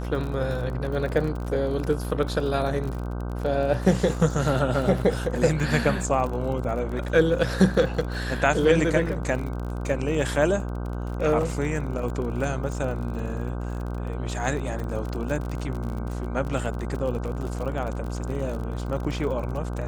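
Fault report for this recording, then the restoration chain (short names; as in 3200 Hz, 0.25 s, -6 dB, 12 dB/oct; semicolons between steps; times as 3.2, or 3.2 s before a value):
buzz 60 Hz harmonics 26 -30 dBFS
crackle 41/s -31 dBFS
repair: de-click; de-hum 60 Hz, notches 26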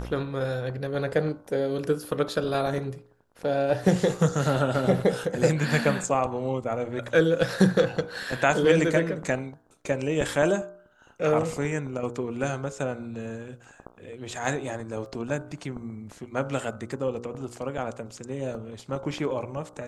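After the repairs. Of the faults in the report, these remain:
none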